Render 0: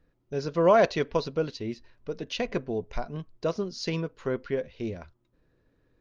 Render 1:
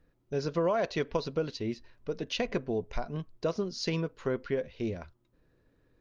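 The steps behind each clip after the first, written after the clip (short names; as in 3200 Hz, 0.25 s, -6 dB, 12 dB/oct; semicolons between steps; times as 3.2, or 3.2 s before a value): compressor 6:1, threshold -25 dBFS, peak gain reduction 10 dB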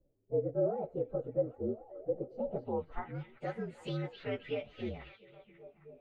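inharmonic rescaling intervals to 119%; delay with a stepping band-pass 0.269 s, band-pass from 3600 Hz, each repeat -0.7 oct, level -6 dB; low-pass sweep 500 Hz -> 2700 Hz, 2.38–3.34; gain -4.5 dB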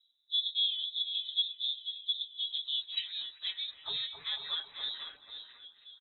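on a send: echo 0.492 s -9 dB; on the sum: inverted band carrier 3900 Hz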